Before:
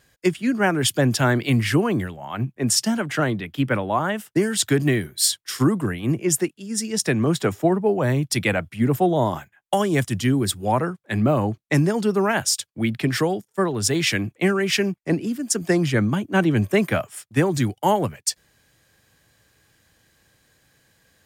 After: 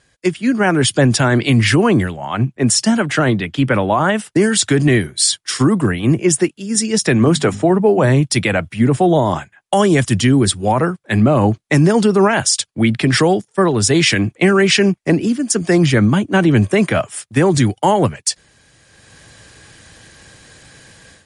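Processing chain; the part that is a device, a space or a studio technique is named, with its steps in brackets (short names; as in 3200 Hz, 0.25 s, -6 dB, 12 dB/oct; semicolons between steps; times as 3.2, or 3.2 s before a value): 7.17–8.1 notches 50/100/150/200/250 Hz; low-bitrate web radio (AGC gain up to 15.5 dB; limiter -7 dBFS, peak gain reduction 6 dB; gain +3 dB; MP3 48 kbps 48000 Hz)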